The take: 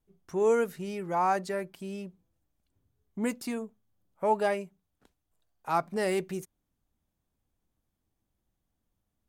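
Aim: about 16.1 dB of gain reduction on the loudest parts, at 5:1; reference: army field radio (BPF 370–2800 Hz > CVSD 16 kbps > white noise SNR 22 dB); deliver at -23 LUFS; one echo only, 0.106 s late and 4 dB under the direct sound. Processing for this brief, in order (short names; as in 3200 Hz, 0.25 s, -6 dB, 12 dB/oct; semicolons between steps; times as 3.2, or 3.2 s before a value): compressor 5:1, threshold -40 dBFS; BPF 370–2800 Hz; echo 0.106 s -4 dB; CVSD 16 kbps; white noise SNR 22 dB; gain +22 dB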